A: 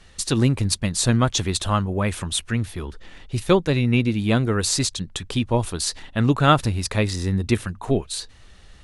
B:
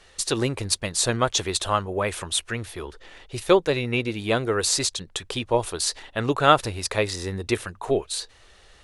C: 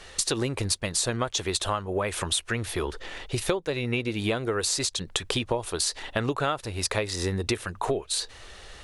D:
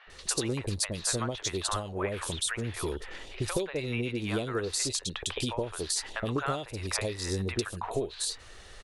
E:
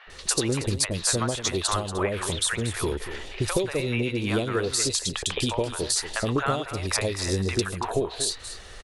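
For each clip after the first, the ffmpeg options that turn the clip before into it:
ffmpeg -i in.wav -af "lowshelf=frequency=310:width_type=q:width=1.5:gain=-8.5" out.wav
ffmpeg -i in.wav -af "acompressor=threshold=-31dB:ratio=12,volume=7.5dB" out.wav
ffmpeg -i in.wav -filter_complex "[0:a]acrossover=split=740|3000[link_01][link_02][link_03];[link_01]adelay=70[link_04];[link_03]adelay=100[link_05];[link_04][link_02][link_05]amix=inputs=3:normalize=0,volume=-3dB" out.wav
ffmpeg -i in.wav -af "aecho=1:1:235:0.251,volume=5.5dB" out.wav

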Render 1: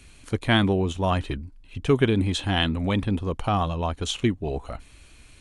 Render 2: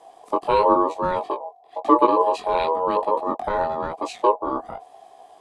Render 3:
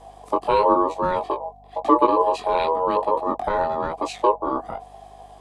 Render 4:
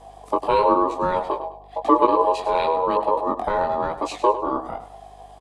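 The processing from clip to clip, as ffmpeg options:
ffmpeg -i in.wav -af "flanger=delay=16:depth=6.8:speed=0.98,lowshelf=frequency=580:width_type=q:width=1.5:gain=11,aeval=exprs='val(0)*sin(2*PI*730*n/s)':channel_layout=same,volume=-2.5dB" out.wav
ffmpeg -i in.wav -filter_complex "[0:a]asplit=2[link_01][link_02];[link_02]acompressor=threshold=-25dB:ratio=6,volume=-2.5dB[link_03];[link_01][link_03]amix=inputs=2:normalize=0,aeval=exprs='val(0)+0.00355*(sin(2*PI*50*n/s)+sin(2*PI*2*50*n/s)/2+sin(2*PI*3*50*n/s)/3+sin(2*PI*4*50*n/s)/4+sin(2*PI*5*50*n/s)/5)':channel_layout=same,volume=-2dB" out.wav
ffmpeg -i in.wav -af "aecho=1:1:102|204|306:0.237|0.0783|0.0258" out.wav

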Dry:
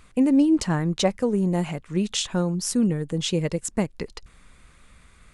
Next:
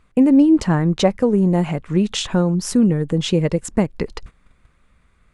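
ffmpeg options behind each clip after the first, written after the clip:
ffmpeg -i in.wav -filter_complex "[0:a]agate=range=-15dB:threshold=-45dB:ratio=16:detection=peak,highshelf=frequency=3200:gain=-11,asplit=2[link_01][link_02];[link_02]acompressor=threshold=-30dB:ratio=6,volume=1dB[link_03];[link_01][link_03]amix=inputs=2:normalize=0,volume=4dB" out.wav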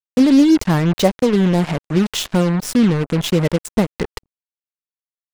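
ffmpeg -i in.wav -af "acrusher=bits=3:mix=0:aa=0.5,volume=1dB" out.wav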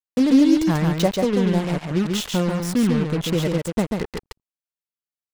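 ffmpeg -i in.wav -af "aecho=1:1:140:0.631,volume=-5.5dB" out.wav

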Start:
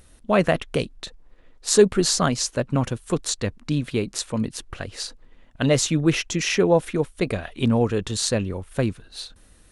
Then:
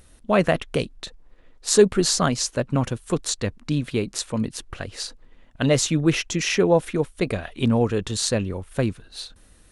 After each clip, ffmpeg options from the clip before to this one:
ffmpeg -i in.wav -af anull out.wav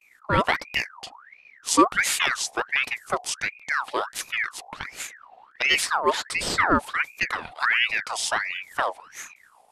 ffmpeg -i in.wav -af "aeval=exprs='val(0)+0.00355*(sin(2*PI*60*n/s)+sin(2*PI*2*60*n/s)/2+sin(2*PI*3*60*n/s)/3+sin(2*PI*4*60*n/s)/4+sin(2*PI*5*60*n/s)/5)':channel_layout=same,agate=range=-33dB:threshold=-42dB:ratio=3:detection=peak,aeval=exprs='val(0)*sin(2*PI*1600*n/s+1600*0.55/1.4*sin(2*PI*1.4*n/s))':channel_layout=same" out.wav

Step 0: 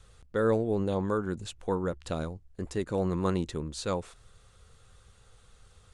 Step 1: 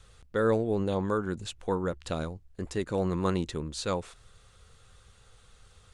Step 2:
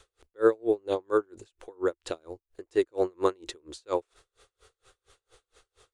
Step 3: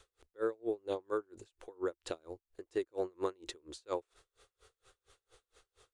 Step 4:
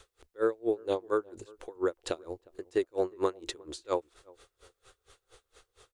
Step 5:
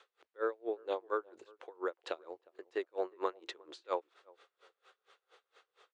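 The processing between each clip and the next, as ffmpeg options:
ffmpeg -i in.wav -af "equalizer=frequency=3000:width_type=o:width=2.6:gain=3" out.wav
ffmpeg -i in.wav -af "lowshelf=frequency=260:width_type=q:width=3:gain=-10.5,aeval=exprs='val(0)*pow(10,-36*(0.5-0.5*cos(2*PI*4.3*n/s))/20)':channel_layout=same,volume=3.5dB" out.wav
ffmpeg -i in.wav -af "acompressor=threshold=-26dB:ratio=4,volume=-5dB" out.wav
ffmpeg -i in.wav -filter_complex "[0:a]asplit=2[link_01][link_02];[link_02]adelay=358,lowpass=frequency=900:poles=1,volume=-23.5dB,asplit=2[link_03][link_04];[link_04]adelay=358,lowpass=frequency=900:poles=1,volume=0.34[link_05];[link_01][link_03][link_05]amix=inputs=3:normalize=0,volume=6.5dB" out.wav
ffmpeg -i in.wav -af "highpass=570,lowpass=3200,volume=-1.5dB" out.wav

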